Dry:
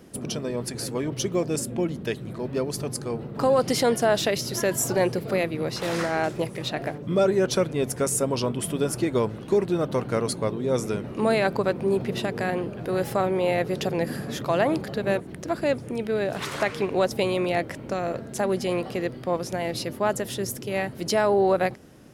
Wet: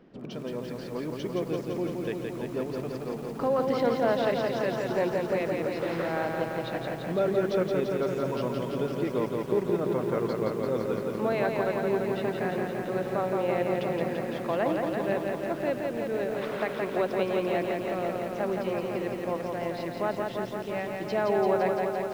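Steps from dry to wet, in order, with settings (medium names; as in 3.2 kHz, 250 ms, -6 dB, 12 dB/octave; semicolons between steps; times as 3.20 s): Gaussian low-pass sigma 2.4 samples; peaking EQ 86 Hz -13.5 dB 0.69 oct; bit-crushed delay 170 ms, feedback 80%, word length 8-bit, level -3.5 dB; trim -5.5 dB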